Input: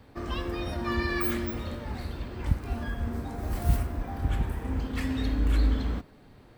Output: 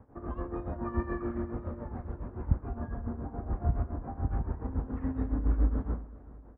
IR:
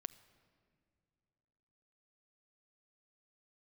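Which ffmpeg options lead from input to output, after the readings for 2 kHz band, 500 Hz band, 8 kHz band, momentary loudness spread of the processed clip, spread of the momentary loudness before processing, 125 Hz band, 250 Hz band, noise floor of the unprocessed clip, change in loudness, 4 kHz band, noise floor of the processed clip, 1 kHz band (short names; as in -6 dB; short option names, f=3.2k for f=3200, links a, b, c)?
-14.5 dB, -3.5 dB, under -30 dB, 10 LU, 9 LU, -3.0 dB, -3.5 dB, -54 dBFS, -4.0 dB, under -35 dB, -51 dBFS, -4.5 dB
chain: -af "lowpass=f=1.3k:w=0.5412,lowpass=f=1.3k:w=1.3066,tremolo=f=7.1:d=0.75,aecho=1:1:374|748|1122:0.112|0.0471|0.0198"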